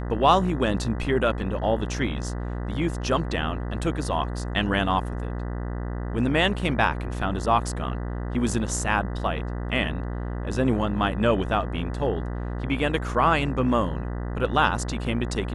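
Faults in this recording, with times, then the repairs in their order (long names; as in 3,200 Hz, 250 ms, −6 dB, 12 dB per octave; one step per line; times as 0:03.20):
mains buzz 60 Hz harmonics 33 −30 dBFS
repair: hum removal 60 Hz, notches 33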